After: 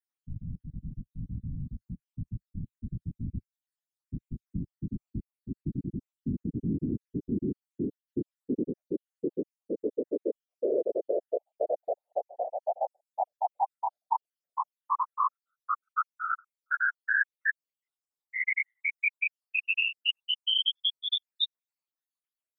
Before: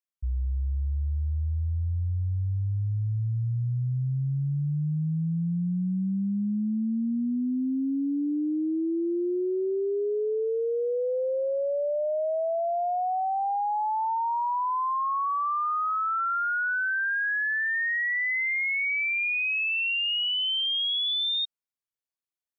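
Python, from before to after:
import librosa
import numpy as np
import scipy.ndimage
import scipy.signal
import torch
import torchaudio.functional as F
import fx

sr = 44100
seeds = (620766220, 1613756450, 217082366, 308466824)

y = fx.spec_dropout(x, sr, seeds[0], share_pct=73)
y = scipy.signal.sosfilt(scipy.signal.butter(4, 52.0, 'highpass', fs=sr, output='sos'), y)
y = fx.low_shelf(y, sr, hz=160.0, db=-11.5)
y = fx.whisperise(y, sr, seeds[1])
y = y * librosa.db_to_amplitude(2.0)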